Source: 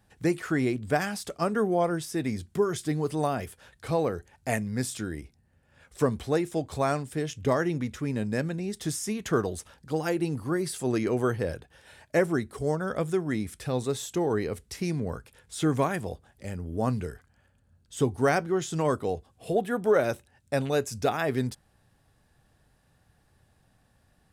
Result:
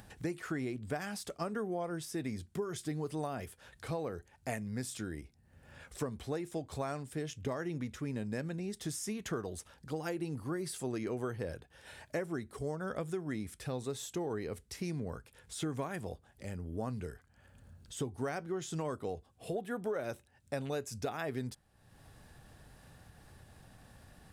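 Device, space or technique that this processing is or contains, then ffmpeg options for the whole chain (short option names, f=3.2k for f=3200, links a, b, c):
upward and downward compression: -af "acompressor=mode=upward:threshold=-37dB:ratio=2.5,acompressor=threshold=-27dB:ratio=6,volume=-6dB"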